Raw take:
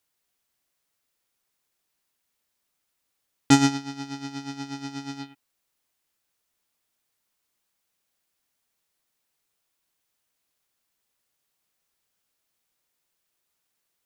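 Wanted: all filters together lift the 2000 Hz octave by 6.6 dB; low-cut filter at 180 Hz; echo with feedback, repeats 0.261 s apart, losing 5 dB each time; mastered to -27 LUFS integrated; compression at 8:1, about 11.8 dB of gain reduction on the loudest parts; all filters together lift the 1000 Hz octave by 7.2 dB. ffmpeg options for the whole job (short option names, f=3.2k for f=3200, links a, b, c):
-af "highpass=180,equalizer=f=1k:t=o:g=8.5,equalizer=f=2k:t=o:g=5.5,acompressor=threshold=-20dB:ratio=8,aecho=1:1:261|522|783|1044|1305|1566|1827:0.562|0.315|0.176|0.0988|0.0553|0.031|0.0173,volume=4dB"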